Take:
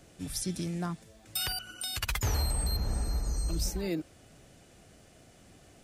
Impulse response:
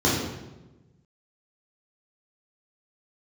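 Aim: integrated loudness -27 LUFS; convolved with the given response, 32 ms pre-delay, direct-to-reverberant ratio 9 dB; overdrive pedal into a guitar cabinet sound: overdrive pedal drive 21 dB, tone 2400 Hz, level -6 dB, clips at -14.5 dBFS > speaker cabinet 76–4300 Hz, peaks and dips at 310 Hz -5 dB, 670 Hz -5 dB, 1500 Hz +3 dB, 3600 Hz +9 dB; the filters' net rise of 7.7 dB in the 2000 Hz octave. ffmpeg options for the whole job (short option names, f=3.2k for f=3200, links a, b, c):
-filter_complex "[0:a]equalizer=f=2k:t=o:g=8,asplit=2[a][b];[1:a]atrim=start_sample=2205,adelay=32[c];[b][c]afir=irnorm=-1:irlink=0,volume=-26dB[d];[a][d]amix=inputs=2:normalize=0,asplit=2[e][f];[f]highpass=f=720:p=1,volume=21dB,asoftclip=type=tanh:threshold=-14.5dB[g];[e][g]amix=inputs=2:normalize=0,lowpass=f=2.4k:p=1,volume=-6dB,highpass=76,equalizer=f=310:t=q:w=4:g=-5,equalizer=f=670:t=q:w=4:g=-5,equalizer=f=1.5k:t=q:w=4:g=3,equalizer=f=3.6k:t=q:w=4:g=9,lowpass=f=4.3k:w=0.5412,lowpass=f=4.3k:w=1.3066"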